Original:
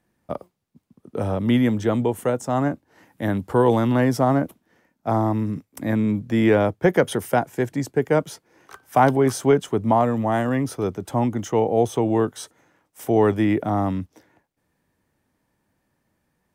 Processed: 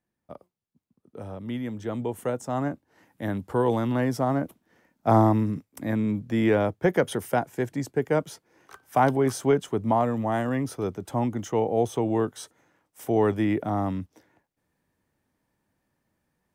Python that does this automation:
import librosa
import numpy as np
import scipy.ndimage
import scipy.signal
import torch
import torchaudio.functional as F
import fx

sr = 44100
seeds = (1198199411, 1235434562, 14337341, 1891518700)

y = fx.gain(x, sr, db=fx.line((1.63, -13.5), (2.22, -6.0), (4.35, -6.0), (5.19, 3.0), (5.69, -4.5)))